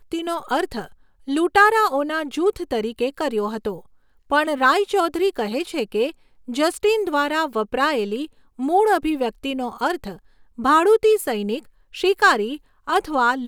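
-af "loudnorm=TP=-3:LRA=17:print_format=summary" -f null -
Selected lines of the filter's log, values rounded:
Input Integrated:    -20.4 LUFS
Input True Peak:      -3.0 dBTP
Input LRA:             2.7 LU
Input Threshold:     -30.8 LUFS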